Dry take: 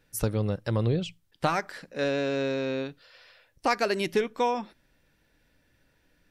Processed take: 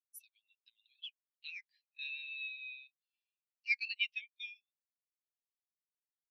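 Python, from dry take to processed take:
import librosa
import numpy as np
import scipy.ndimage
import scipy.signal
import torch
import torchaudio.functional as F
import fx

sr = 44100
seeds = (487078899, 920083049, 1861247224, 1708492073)

y = scipy.signal.sosfilt(scipy.signal.butter(6, 2400.0, 'highpass', fs=sr, output='sos'), x)
y = fx.high_shelf(y, sr, hz=4300.0, db=-10.5)
y = fx.spectral_expand(y, sr, expansion=2.5)
y = F.gain(torch.from_numpy(y), 3.5).numpy()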